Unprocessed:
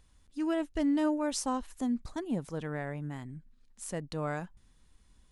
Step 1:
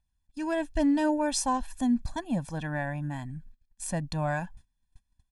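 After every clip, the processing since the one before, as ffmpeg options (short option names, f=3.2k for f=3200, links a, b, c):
-af "aphaser=in_gain=1:out_gain=1:delay=4.1:decay=0.22:speed=0.51:type=triangular,agate=range=-24dB:threshold=-54dB:ratio=16:detection=peak,aecho=1:1:1.2:0.92,volume=2.5dB"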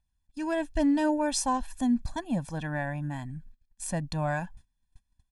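-af anull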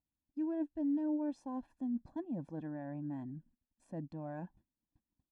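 -af "areverse,acompressor=threshold=-34dB:ratio=6,areverse,bandpass=f=330:t=q:w=2.2:csg=0,volume=4dB"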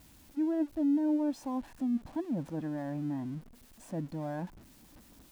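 -af "aeval=exprs='val(0)+0.5*0.00188*sgn(val(0))':c=same,volume=5.5dB"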